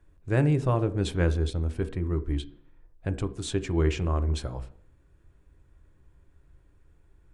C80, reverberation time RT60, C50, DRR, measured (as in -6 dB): 20.5 dB, 0.55 s, 16.5 dB, 11.0 dB